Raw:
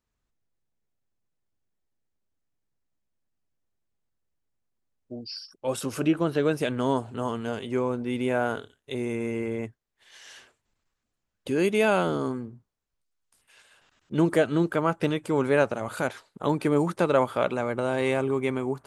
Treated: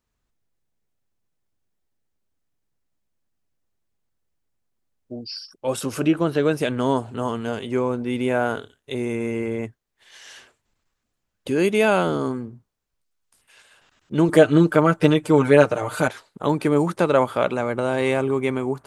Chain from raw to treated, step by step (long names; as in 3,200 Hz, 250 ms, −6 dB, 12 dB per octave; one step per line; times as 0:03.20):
0:14.28–0:16.08: comb filter 6.6 ms, depth 98%
level +4 dB